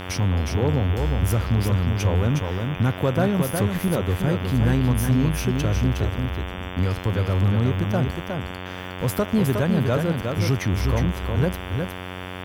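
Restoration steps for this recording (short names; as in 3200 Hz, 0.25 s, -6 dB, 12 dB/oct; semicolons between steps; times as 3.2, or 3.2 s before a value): clip repair -12 dBFS; de-hum 91.6 Hz, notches 39; interpolate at 3.88/8.2, 1.6 ms; inverse comb 0.362 s -5 dB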